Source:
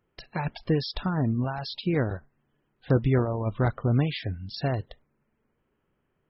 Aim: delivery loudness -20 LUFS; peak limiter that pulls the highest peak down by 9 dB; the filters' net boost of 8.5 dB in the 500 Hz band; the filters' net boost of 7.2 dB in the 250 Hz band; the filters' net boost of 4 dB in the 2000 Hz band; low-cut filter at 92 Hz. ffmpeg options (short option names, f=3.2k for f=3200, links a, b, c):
-af "highpass=92,equalizer=f=250:t=o:g=7,equalizer=f=500:t=o:g=8,equalizer=f=2k:t=o:g=4.5,volume=5dB,alimiter=limit=-7.5dB:level=0:latency=1"